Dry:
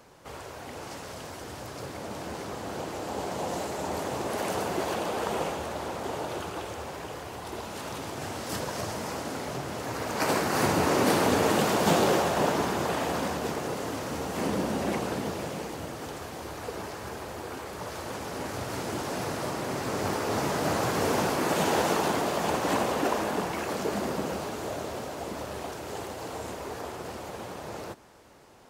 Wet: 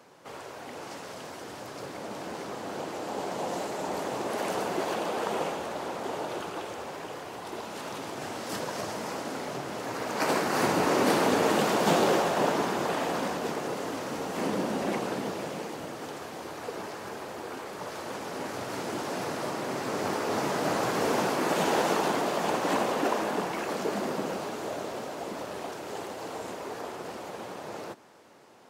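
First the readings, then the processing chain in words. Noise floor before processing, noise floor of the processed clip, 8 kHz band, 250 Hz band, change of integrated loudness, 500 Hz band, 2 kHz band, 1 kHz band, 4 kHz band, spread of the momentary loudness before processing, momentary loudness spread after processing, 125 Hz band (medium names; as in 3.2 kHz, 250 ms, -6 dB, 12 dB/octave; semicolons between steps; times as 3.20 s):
-41 dBFS, -42 dBFS, -2.5 dB, -1.0 dB, -0.5 dB, 0.0 dB, -0.5 dB, 0.0 dB, -1.0 dB, 14 LU, 14 LU, -5.0 dB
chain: high-pass 170 Hz 12 dB/octave; treble shelf 7.4 kHz -5 dB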